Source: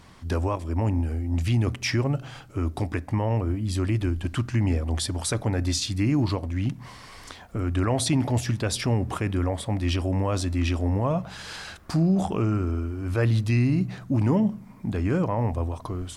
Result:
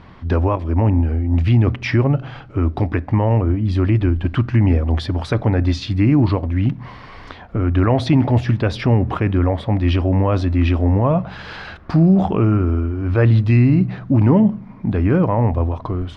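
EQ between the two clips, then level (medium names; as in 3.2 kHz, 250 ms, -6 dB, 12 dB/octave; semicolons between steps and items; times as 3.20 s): distance through air 310 m; +9.0 dB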